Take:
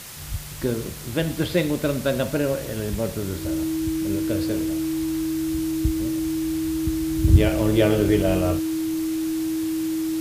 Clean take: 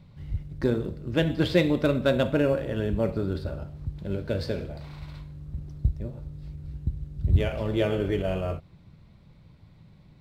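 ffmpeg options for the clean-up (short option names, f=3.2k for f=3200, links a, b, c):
-af "adeclick=t=4,bandreject=f=320:w=30,afwtdn=0.013,asetnsamples=n=441:p=0,asendcmd='7.08 volume volume -6dB',volume=0dB"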